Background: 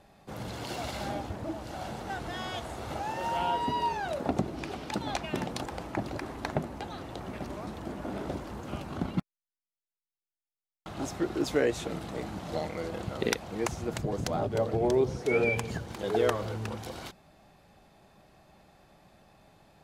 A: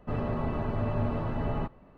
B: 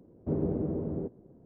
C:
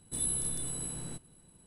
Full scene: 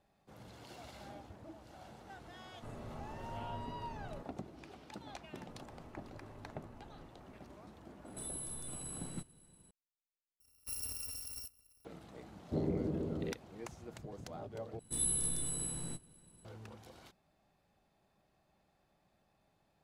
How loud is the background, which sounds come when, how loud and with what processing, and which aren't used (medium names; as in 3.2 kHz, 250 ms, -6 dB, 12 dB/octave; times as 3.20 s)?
background -16 dB
2.55 s: add A -17.5 dB
5.41 s: add A -9.5 dB + compression 5:1, threshold -45 dBFS
8.05 s: add C -3.5 dB + peak limiter -33 dBFS
10.40 s: replace with B -12.5 dB + bit-reversed sample order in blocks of 256 samples
12.25 s: add B -5 dB
14.79 s: replace with C -2.5 dB + doubling 18 ms -11.5 dB